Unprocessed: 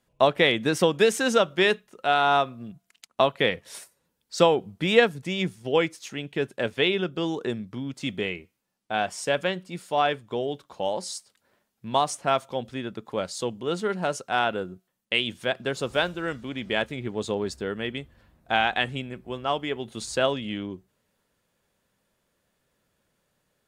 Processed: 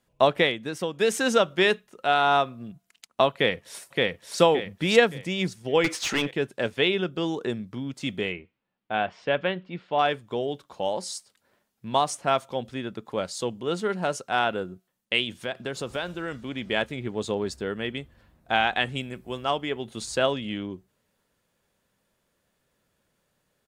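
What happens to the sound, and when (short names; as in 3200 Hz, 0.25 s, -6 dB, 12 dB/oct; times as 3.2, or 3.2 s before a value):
0.39–1.13 dip -8.5 dB, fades 0.17 s
3.33–4.39 echo throw 0.57 s, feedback 35%, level -1 dB
5.84–6.31 overdrive pedal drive 26 dB, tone 3300 Hz, clips at -14 dBFS
8.32–9.99 LPF 3400 Hz 24 dB/oct
15.24–16.44 compressor 2.5:1, threshold -28 dBFS
18.95–19.51 high shelf 4700 Hz +9.5 dB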